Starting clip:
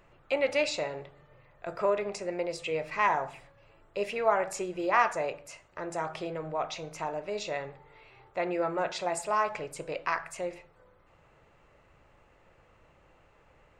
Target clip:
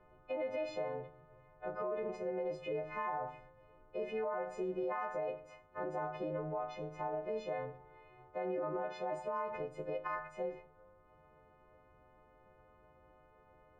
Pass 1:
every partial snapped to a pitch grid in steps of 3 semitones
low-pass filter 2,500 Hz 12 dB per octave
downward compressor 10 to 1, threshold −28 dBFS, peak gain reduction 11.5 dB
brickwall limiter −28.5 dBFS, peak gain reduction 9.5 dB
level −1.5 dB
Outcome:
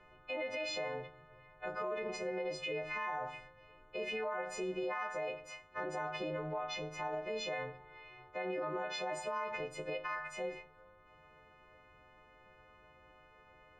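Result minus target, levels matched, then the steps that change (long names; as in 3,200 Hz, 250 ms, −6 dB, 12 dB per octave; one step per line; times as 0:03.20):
2,000 Hz band +7.0 dB
change: low-pass filter 990 Hz 12 dB per octave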